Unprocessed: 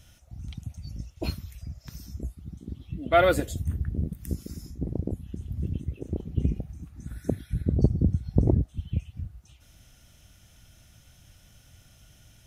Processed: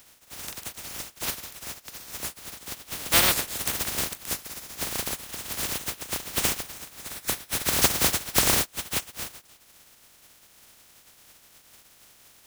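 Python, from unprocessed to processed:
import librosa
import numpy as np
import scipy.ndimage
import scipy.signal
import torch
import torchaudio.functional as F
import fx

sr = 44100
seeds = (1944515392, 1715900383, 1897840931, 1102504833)

y = fx.spec_flatten(x, sr, power=0.11)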